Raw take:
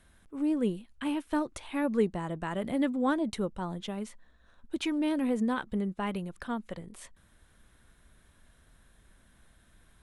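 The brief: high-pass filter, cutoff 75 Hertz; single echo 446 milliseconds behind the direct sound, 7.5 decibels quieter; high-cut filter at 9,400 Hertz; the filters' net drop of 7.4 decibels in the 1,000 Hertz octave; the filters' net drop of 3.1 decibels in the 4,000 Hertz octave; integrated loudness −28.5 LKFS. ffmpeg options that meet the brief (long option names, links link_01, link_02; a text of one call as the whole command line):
ffmpeg -i in.wav -af "highpass=75,lowpass=9400,equalizer=frequency=1000:width_type=o:gain=-9,equalizer=frequency=4000:width_type=o:gain=-3.5,aecho=1:1:446:0.422,volume=4dB" out.wav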